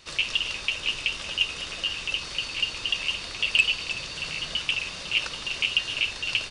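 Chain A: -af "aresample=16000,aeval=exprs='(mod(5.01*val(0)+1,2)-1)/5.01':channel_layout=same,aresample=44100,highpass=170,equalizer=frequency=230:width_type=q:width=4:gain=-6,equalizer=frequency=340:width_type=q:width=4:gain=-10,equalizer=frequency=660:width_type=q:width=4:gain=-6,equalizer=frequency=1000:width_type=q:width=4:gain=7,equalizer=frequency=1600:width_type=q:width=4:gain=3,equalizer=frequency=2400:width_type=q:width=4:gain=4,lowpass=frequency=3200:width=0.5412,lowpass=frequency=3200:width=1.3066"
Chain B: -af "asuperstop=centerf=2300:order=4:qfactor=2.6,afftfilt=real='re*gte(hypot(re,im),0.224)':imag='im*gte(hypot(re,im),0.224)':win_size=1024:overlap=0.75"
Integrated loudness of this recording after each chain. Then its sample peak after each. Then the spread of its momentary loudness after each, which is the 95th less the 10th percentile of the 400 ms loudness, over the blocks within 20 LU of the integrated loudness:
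−26.5, −32.5 LKFS; −11.0, −12.5 dBFS; 5, 9 LU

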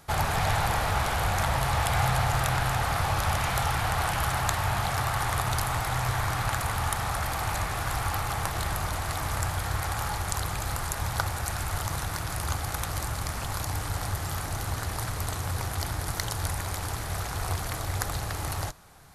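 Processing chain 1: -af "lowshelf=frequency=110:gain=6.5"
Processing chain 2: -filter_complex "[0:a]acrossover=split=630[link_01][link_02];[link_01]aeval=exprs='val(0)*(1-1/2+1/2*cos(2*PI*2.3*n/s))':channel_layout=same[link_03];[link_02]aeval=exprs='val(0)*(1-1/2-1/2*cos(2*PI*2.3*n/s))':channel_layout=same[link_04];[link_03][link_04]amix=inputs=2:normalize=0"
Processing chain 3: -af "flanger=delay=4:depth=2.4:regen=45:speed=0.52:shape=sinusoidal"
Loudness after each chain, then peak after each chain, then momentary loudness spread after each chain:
−27.5, −33.5, −33.5 LKFS; −4.5, −9.5, −9.0 dBFS; 5, 6, 6 LU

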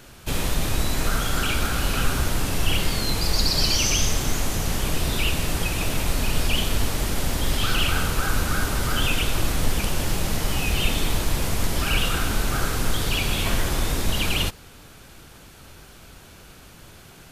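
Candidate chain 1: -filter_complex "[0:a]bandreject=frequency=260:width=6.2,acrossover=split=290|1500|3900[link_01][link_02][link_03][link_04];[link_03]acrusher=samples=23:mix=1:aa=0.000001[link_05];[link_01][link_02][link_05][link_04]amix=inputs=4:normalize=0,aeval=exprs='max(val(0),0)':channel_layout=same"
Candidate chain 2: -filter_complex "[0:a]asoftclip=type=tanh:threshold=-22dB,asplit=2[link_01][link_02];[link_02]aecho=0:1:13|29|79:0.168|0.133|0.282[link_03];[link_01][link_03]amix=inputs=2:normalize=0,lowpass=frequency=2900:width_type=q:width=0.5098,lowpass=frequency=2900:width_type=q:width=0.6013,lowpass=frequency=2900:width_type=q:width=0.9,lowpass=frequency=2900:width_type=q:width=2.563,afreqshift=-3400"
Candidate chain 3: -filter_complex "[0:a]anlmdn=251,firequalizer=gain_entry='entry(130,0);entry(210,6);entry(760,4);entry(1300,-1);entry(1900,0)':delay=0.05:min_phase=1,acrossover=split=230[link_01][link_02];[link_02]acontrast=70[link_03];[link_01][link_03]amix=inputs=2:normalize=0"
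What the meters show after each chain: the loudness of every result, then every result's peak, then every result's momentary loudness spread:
−29.5, −22.5, −19.5 LKFS; −8.0, −12.0, −3.5 dBFS; 3, 2, 7 LU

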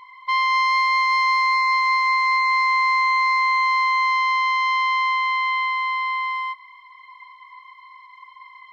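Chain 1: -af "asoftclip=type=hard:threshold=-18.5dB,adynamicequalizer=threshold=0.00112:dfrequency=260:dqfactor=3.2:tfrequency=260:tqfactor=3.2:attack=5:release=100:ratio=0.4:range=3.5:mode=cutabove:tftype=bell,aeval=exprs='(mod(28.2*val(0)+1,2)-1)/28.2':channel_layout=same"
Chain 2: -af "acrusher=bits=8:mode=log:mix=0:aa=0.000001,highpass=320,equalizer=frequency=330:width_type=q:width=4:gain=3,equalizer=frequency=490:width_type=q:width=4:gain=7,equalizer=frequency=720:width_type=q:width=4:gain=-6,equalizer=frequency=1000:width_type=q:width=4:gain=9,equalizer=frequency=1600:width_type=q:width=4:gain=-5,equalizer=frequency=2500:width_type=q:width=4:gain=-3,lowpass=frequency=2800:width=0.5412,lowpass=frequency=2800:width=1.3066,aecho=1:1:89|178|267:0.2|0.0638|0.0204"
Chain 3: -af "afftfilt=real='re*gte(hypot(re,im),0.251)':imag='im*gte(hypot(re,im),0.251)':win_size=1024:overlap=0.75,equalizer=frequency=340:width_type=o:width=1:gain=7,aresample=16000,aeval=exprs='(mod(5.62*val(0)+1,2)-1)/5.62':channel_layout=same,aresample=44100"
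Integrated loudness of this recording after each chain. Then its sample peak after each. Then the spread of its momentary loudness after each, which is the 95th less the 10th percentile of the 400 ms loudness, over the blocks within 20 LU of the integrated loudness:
−30.5, −13.5, −19.0 LKFS; −29.0, −6.5, −11.5 dBFS; 13, 8, 5 LU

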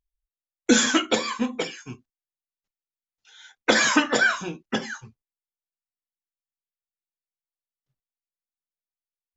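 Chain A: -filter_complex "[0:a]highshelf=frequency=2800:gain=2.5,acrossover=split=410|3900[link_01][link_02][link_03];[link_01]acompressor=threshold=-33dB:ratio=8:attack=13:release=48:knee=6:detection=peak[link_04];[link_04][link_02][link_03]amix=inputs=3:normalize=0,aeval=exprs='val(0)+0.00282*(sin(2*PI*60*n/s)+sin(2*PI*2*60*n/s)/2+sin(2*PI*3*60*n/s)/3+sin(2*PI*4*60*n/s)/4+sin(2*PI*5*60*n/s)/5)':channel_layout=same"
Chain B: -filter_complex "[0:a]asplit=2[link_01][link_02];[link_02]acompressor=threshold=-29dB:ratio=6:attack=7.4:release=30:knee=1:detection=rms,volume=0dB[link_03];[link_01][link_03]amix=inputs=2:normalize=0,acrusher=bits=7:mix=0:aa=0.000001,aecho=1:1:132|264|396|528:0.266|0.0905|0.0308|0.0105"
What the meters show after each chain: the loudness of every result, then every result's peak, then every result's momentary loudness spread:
−22.5, −20.0 LKFS; −4.5, −2.5 dBFS; 16, 16 LU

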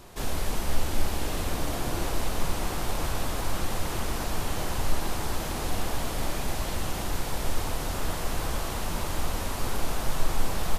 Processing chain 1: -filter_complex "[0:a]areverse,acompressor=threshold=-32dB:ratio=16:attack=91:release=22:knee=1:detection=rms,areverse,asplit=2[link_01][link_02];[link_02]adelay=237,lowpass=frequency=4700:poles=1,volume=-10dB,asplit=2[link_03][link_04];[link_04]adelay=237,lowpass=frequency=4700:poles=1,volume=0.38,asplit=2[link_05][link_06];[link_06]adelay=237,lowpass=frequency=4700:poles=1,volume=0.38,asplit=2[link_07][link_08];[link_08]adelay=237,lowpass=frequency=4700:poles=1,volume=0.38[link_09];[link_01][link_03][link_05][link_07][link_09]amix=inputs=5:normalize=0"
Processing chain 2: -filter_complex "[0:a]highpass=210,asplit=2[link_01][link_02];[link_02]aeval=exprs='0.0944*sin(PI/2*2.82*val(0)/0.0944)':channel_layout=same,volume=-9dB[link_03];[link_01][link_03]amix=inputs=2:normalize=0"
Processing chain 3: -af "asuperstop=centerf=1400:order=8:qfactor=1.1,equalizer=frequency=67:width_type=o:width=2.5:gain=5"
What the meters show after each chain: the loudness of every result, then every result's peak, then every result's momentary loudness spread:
−34.0, −27.0, −31.0 LKFS; −16.5, −22.5, −10.0 dBFS; 3, 1, 1 LU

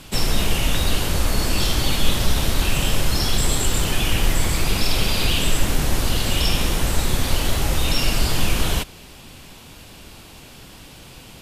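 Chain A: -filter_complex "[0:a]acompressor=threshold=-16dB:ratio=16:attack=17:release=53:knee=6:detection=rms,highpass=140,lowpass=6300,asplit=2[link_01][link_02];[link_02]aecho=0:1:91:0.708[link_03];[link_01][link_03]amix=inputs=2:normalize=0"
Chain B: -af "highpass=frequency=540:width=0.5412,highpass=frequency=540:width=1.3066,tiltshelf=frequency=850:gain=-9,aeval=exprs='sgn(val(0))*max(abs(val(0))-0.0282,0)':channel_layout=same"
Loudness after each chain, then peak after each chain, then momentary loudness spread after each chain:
−24.5, −18.0 LKFS; −10.0, −4.5 dBFS; 19, 4 LU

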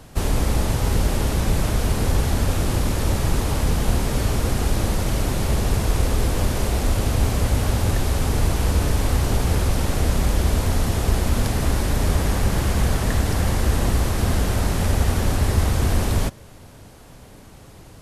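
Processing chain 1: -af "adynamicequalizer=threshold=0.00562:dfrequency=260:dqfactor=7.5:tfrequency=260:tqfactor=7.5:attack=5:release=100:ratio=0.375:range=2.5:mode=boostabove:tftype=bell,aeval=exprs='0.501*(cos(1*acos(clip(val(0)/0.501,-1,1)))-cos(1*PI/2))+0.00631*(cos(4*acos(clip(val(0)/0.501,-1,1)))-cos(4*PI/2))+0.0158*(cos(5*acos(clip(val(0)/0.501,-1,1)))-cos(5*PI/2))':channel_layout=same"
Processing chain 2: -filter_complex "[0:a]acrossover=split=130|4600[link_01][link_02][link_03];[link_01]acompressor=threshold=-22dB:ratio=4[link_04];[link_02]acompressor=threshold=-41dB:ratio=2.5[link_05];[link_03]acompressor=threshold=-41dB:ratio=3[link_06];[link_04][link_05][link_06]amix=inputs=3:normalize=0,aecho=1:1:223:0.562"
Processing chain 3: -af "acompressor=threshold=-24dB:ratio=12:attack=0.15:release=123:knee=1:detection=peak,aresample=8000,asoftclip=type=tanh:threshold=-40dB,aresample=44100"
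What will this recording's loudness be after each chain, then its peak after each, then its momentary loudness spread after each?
−21.5, −27.0, −44.0 LKFS; −6.0, −10.5, −37.0 dBFS; 1, 2, 1 LU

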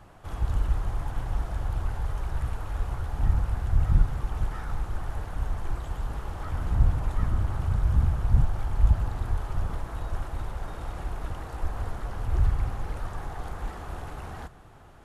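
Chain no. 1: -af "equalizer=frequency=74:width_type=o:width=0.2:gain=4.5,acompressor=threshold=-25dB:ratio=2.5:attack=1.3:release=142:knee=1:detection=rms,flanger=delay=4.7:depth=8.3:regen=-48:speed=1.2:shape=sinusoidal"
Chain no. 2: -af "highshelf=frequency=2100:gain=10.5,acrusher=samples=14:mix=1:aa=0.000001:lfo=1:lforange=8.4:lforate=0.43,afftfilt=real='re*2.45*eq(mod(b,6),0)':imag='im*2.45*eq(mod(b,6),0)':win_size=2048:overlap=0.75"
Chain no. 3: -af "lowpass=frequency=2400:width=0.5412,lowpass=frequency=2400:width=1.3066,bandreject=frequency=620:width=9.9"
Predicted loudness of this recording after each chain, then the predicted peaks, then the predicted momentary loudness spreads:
−38.5, −37.5, −30.5 LKFS; −20.5, −15.0, −7.5 dBFS; 6, 8, 13 LU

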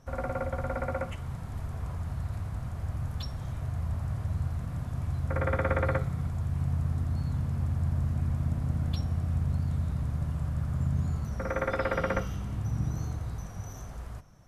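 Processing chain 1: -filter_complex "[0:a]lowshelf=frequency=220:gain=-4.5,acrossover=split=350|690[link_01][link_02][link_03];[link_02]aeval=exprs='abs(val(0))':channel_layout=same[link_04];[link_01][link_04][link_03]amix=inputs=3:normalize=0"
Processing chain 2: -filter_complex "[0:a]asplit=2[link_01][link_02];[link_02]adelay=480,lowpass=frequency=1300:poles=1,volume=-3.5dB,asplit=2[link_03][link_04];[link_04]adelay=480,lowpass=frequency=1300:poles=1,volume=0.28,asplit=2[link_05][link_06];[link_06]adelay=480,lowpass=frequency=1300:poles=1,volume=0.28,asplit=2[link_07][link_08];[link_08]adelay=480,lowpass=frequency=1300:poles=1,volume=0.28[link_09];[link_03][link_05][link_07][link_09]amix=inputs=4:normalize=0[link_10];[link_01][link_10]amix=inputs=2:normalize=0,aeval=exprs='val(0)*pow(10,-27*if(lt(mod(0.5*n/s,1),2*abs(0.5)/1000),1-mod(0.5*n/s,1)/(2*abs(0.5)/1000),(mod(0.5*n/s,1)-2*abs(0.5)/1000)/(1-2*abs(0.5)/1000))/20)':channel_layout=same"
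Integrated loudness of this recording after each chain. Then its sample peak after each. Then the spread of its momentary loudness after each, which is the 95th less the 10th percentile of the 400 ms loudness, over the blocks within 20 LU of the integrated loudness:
−35.5, −37.5 LKFS; −15.0, −14.0 dBFS; 8, 20 LU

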